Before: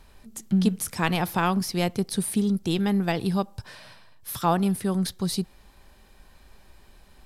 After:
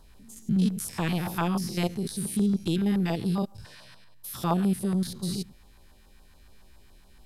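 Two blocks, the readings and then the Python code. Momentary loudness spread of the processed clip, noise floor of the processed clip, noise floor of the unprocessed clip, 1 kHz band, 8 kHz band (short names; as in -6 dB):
10 LU, -55 dBFS, -54 dBFS, -6.5 dB, -4.0 dB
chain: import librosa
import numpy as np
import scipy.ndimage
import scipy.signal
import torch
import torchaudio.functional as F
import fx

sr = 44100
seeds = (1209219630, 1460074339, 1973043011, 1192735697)

y = fx.spec_steps(x, sr, hold_ms=100)
y = fx.filter_lfo_notch(y, sr, shape='saw_down', hz=7.1, low_hz=400.0, high_hz=2600.0, q=0.79)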